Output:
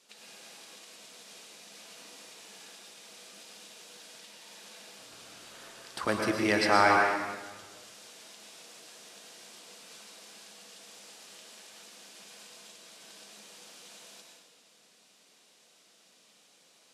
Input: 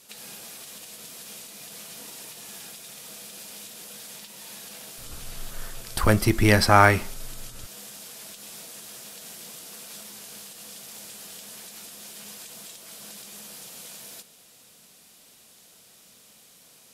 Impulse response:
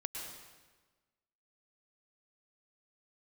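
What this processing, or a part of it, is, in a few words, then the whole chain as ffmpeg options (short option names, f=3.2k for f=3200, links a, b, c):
supermarket ceiling speaker: -filter_complex "[0:a]highpass=250,lowpass=6.8k[a];[1:a]atrim=start_sample=2205[b];[a][b]afir=irnorm=-1:irlink=0,volume=-5dB"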